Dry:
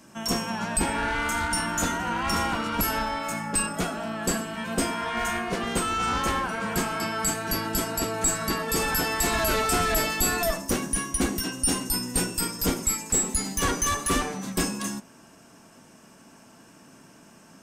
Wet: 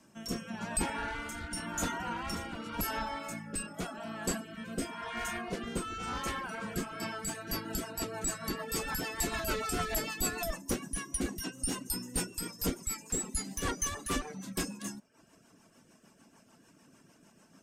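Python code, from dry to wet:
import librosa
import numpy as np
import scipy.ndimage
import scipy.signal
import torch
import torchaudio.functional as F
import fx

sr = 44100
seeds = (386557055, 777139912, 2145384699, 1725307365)

y = fx.dereverb_blind(x, sr, rt60_s=0.55)
y = fx.rotary_switch(y, sr, hz=0.9, then_hz=6.7, switch_at_s=6.74)
y = F.gain(torch.from_numpy(y), -6.0).numpy()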